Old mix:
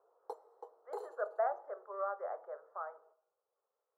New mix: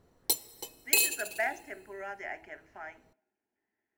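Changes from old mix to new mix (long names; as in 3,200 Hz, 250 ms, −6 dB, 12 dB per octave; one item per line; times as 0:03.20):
speech: add phaser with its sweep stopped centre 780 Hz, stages 8
master: remove elliptic band-pass filter 450–1,300 Hz, stop band 40 dB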